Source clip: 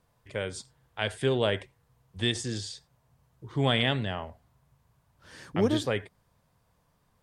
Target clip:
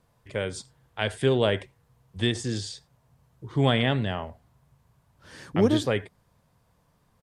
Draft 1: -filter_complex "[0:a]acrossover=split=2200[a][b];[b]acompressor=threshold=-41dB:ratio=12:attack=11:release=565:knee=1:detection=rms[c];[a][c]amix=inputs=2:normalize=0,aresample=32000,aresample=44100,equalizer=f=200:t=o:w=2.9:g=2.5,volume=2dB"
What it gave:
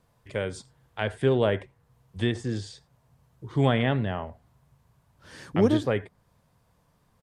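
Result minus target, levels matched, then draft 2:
compressor: peak gain reduction +11 dB
-filter_complex "[0:a]acrossover=split=2200[a][b];[b]acompressor=threshold=-29dB:ratio=12:attack=11:release=565:knee=1:detection=rms[c];[a][c]amix=inputs=2:normalize=0,aresample=32000,aresample=44100,equalizer=f=200:t=o:w=2.9:g=2.5,volume=2dB"

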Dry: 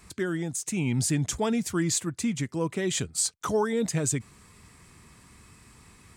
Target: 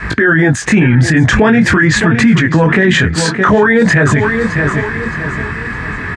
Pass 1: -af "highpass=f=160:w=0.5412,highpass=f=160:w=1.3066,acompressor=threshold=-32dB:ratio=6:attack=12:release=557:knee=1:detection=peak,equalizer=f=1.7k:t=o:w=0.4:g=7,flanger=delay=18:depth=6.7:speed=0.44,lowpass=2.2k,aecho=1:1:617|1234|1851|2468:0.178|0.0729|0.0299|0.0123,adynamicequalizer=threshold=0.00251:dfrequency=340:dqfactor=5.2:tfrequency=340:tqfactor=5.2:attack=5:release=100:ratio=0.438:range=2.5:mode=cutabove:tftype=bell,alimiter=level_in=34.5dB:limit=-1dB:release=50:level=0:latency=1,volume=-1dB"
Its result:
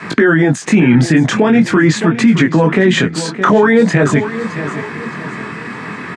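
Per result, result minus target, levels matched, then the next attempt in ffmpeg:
compressor: peak gain reduction +6 dB; 2000 Hz band -5.0 dB; 125 Hz band -2.5 dB
-af "highpass=f=160:w=0.5412,highpass=f=160:w=1.3066,acompressor=threshold=-25dB:ratio=6:attack=12:release=557:knee=1:detection=peak,equalizer=f=1.7k:t=o:w=0.4:g=7,flanger=delay=18:depth=6.7:speed=0.44,lowpass=2.2k,aecho=1:1:617|1234|1851|2468:0.178|0.0729|0.0299|0.0123,adynamicequalizer=threshold=0.00251:dfrequency=340:dqfactor=5.2:tfrequency=340:tqfactor=5.2:attack=5:release=100:ratio=0.438:range=2.5:mode=cutabove:tftype=bell,alimiter=level_in=34.5dB:limit=-1dB:release=50:level=0:latency=1,volume=-1dB"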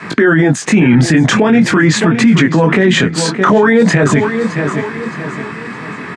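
2000 Hz band -4.0 dB; 125 Hz band -2.0 dB
-af "highpass=f=160:w=0.5412,highpass=f=160:w=1.3066,acompressor=threshold=-25dB:ratio=6:attack=12:release=557:knee=1:detection=peak,equalizer=f=1.7k:t=o:w=0.4:g=16.5,flanger=delay=18:depth=6.7:speed=0.44,lowpass=2.2k,aecho=1:1:617|1234|1851|2468:0.178|0.0729|0.0299|0.0123,adynamicequalizer=threshold=0.00251:dfrequency=340:dqfactor=5.2:tfrequency=340:tqfactor=5.2:attack=5:release=100:ratio=0.438:range=2.5:mode=cutabove:tftype=bell,alimiter=level_in=34.5dB:limit=-1dB:release=50:level=0:latency=1,volume=-1dB"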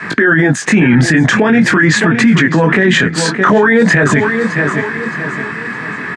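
125 Hz band -2.5 dB
-af "acompressor=threshold=-25dB:ratio=6:attack=12:release=557:knee=1:detection=peak,equalizer=f=1.7k:t=o:w=0.4:g=16.5,flanger=delay=18:depth=6.7:speed=0.44,lowpass=2.2k,aecho=1:1:617|1234|1851|2468:0.178|0.0729|0.0299|0.0123,adynamicequalizer=threshold=0.00251:dfrequency=340:dqfactor=5.2:tfrequency=340:tqfactor=5.2:attack=5:release=100:ratio=0.438:range=2.5:mode=cutabove:tftype=bell,alimiter=level_in=34.5dB:limit=-1dB:release=50:level=0:latency=1,volume=-1dB"

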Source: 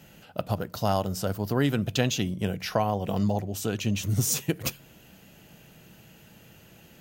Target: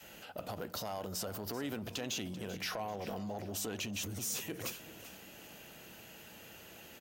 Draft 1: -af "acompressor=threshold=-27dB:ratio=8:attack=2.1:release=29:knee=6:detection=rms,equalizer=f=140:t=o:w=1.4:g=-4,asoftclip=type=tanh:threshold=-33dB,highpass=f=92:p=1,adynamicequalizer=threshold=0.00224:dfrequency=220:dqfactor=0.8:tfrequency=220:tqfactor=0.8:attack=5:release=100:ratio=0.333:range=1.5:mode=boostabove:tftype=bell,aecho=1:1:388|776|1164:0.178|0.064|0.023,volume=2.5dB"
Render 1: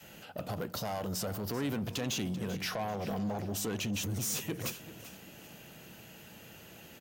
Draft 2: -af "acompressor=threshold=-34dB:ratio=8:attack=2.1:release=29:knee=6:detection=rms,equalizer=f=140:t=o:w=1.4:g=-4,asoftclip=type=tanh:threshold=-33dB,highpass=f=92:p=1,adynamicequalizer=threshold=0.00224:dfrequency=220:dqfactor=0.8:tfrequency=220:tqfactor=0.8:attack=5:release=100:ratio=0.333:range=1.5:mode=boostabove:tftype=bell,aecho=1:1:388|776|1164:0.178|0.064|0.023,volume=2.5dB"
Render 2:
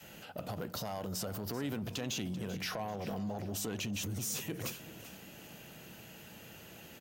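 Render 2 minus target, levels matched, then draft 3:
125 Hz band +4.0 dB
-af "acompressor=threshold=-34dB:ratio=8:attack=2.1:release=29:knee=6:detection=rms,equalizer=f=140:t=o:w=1.4:g=-11.5,asoftclip=type=tanh:threshold=-33dB,highpass=f=92:p=1,adynamicequalizer=threshold=0.00224:dfrequency=220:dqfactor=0.8:tfrequency=220:tqfactor=0.8:attack=5:release=100:ratio=0.333:range=1.5:mode=boostabove:tftype=bell,aecho=1:1:388|776|1164:0.178|0.064|0.023,volume=2.5dB"

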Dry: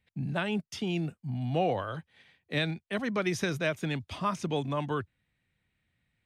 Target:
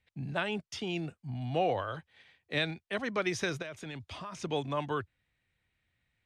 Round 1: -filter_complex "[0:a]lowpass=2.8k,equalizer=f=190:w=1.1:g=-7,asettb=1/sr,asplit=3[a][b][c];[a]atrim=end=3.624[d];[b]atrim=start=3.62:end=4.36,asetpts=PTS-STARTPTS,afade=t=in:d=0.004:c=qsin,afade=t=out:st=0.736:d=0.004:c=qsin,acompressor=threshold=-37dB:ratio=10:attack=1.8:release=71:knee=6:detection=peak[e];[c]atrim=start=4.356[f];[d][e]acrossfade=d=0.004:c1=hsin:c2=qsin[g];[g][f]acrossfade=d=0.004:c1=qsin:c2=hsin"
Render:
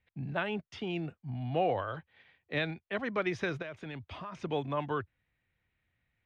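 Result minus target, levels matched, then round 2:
8000 Hz band -13.5 dB
-filter_complex "[0:a]lowpass=8.6k,equalizer=f=190:w=1.1:g=-7,asettb=1/sr,asplit=3[a][b][c];[a]atrim=end=3.624[d];[b]atrim=start=3.62:end=4.36,asetpts=PTS-STARTPTS,afade=t=in:d=0.004:c=qsin,afade=t=out:st=0.736:d=0.004:c=qsin,acompressor=threshold=-37dB:ratio=10:attack=1.8:release=71:knee=6:detection=peak[e];[c]atrim=start=4.356[f];[d][e]acrossfade=d=0.004:c1=hsin:c2=qsin[g];[g][f]acrossfade=d=0.004:c1=qsin:c2=hsin"

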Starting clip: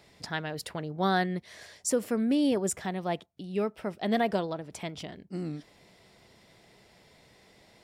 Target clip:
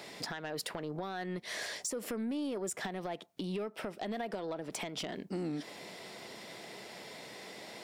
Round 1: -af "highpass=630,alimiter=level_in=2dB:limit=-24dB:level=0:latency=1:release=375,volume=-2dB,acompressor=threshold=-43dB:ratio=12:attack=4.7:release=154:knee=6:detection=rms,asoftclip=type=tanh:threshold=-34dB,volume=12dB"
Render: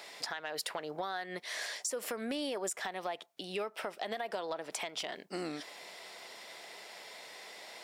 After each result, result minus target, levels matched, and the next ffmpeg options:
soft clip: distortion -9 dB; 250 Hz band -5.5 dB
-af "highpass=630,alimiter=level_in=2dB:limit=-24dB:level=0:latency=1:release=375,volume=-2dB,acompressor=threshold=-43dB:ratio=12:attack=4.7:release=154:knee=6:detection=rms,asoftclip=type=tanh:threshold=-40.5dB,volume=12dB"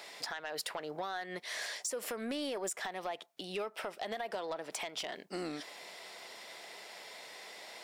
250 Hz band -5.5 dB
-af "highpass=230,alimiter=level_in=2dB:limit=-24dB:level=0:latency=1:release=375,volume=-2dB,acompressor=threshold=-43dB:ratio=12:attack=4.7:release=154:knee=6:detection=rms,asoftclip=type=tanh:threshold=-40.5dB,volume=12dB"

